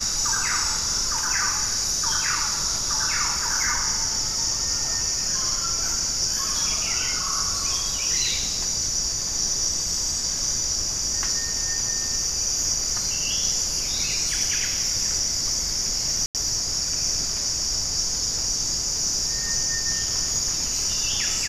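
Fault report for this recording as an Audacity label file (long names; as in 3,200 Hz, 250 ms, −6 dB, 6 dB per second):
16.260000	16.350000	drop-out 88 ms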